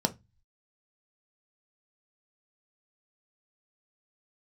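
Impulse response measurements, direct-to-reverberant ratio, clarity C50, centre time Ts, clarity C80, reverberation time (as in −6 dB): 6.0 dB, 20.0 dB, 5 ms, 31.0 dB, 0.20 s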